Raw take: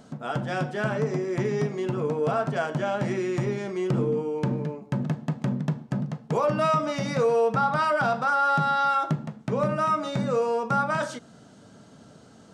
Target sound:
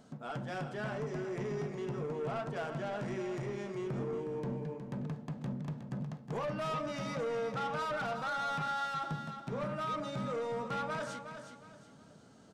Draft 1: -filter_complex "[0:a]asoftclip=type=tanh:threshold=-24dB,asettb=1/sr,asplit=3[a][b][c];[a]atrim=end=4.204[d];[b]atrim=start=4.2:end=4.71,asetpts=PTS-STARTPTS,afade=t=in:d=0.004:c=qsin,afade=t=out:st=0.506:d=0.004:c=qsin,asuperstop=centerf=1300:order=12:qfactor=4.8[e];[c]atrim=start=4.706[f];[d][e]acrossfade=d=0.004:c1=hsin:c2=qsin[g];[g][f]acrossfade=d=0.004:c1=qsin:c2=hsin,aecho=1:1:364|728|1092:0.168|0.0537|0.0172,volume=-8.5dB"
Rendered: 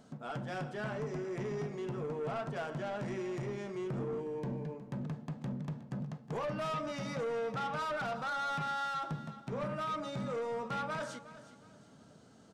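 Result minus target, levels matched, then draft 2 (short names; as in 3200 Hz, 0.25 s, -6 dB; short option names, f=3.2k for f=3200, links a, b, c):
echo-to-direct -6.5 dB
-filter_complex "[0:a]asoftclip=type=tanh:threshold=-24dB,asettb=1/sr,asplit=3[a][b][c];[a]atrim=end=4.204[d];[b]atrim=start=4.2:end=4.71,asetpts=PTS-STARTPTS,afade=t=in:d=0.004:c=qsin,afade=t=out:st=0.506:d=0.004:c=qsin,asuperstop=centerf=1300:order=12:qfactor=4.8[e];[c]atrim=start=4.706[f];[d][e]acrossfade=d=0.004:c1=hsin:c2=qsin[g];[g][f]acrossfade=d=0.004:c1=qsin:c2=hsin,aecho=1:1:364|728|1092|1456:0.355|0.114|0.0363|0.0116,volume=-8.5dB"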